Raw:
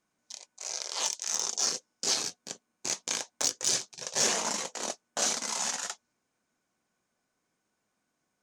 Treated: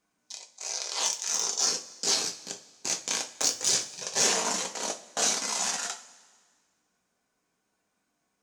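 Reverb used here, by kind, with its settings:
coupled-rooms reverb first 0.27 s, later 1.7 s, from −18 dB, DRR 3 dB
level +1 dB

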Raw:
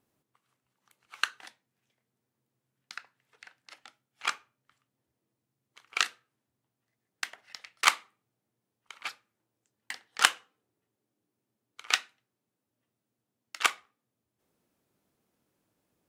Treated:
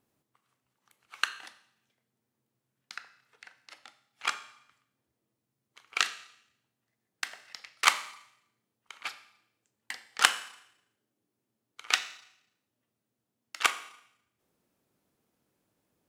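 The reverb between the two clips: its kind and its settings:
four-comb reverb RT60 0.75 s, combs from 28 ms, DRR 12 dB

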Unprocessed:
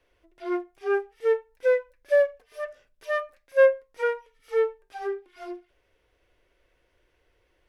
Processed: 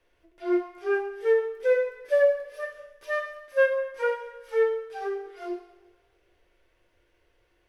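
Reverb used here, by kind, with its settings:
coupled-rooms reverb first 0.79 s, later 2.2 s, DRR 1.5 dB
level −2 dB

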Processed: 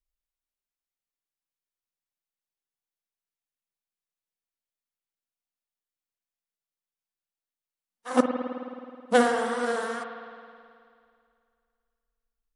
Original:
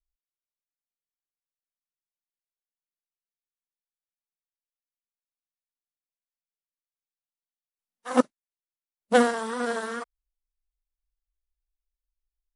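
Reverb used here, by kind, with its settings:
spring reverb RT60 2.3 s, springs 53 ms, chirp 75 ms, DRR 4.5 dB
level −1 dB

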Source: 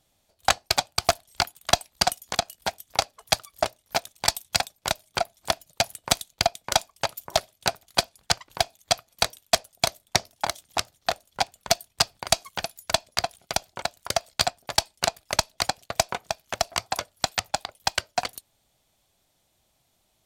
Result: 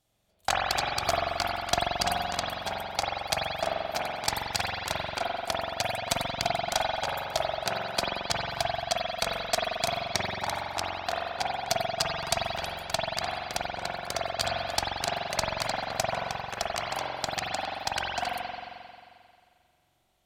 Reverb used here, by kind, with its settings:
spring reverb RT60 2.2 s, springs 44 ms, chirp 55 ms, DRR −5 dB
level −7.5 dB

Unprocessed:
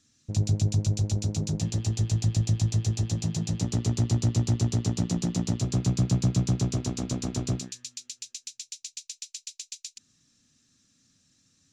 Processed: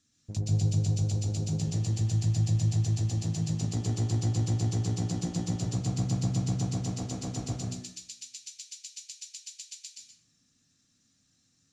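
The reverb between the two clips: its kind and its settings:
dense smooth reverb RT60 0.62 s, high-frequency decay 0.65×, pre-delay 110 ms, DRR 0 dB
level −6.5 dB

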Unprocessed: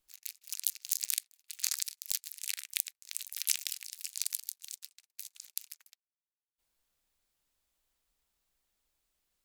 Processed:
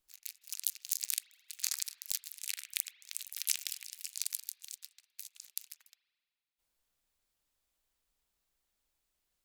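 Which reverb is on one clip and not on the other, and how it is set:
spring reverb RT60 1.9 s, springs 38 ms, chirp 45 ms, DRR 14.5 dB
level −2 dB

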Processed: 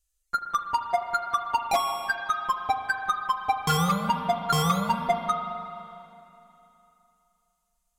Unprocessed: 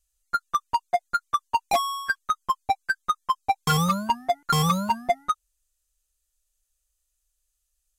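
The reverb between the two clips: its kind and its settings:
spring reverb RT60 2.9 s, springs 37/41 ms, chirp 45 ms, DRR 4.5 dB
level −2 dB

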